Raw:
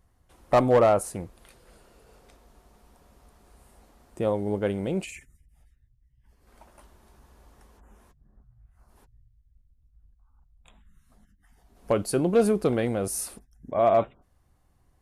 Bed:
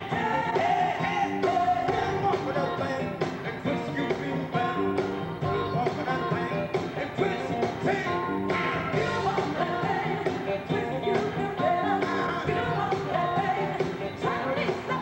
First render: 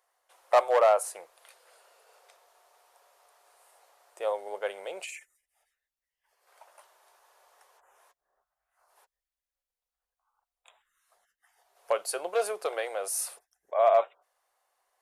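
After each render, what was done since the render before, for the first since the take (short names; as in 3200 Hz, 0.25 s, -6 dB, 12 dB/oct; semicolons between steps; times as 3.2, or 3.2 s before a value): inverse Chebyshev high-pass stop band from 270 Hz, stop band 40 dB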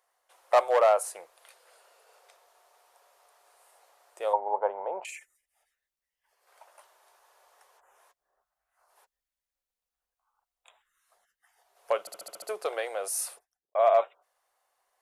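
4.33–5.05 synth low-pass 910 Hz, resonance Q 7.3; 12 stutter in place 0.07 s, 7 plays; 13.29–13.75 studio fade out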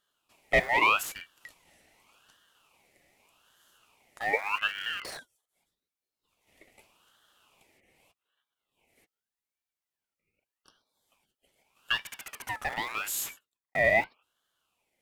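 in parallel at -8.5 dB: Schmitt trigger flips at -38 dBFS; on the sum: ring modulator with a swept carrier 1800 Hz, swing 30%, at 0.83 Hz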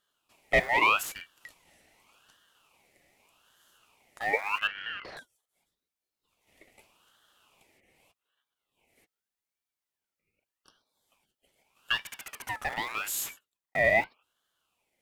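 4.67–5.17 air absorption 270 m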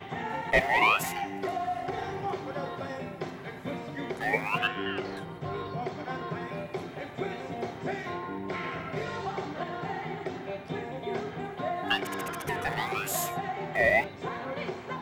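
add bed -7.5 dB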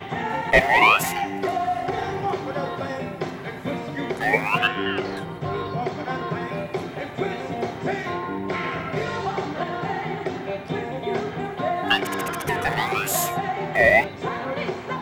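gain +7.5 dB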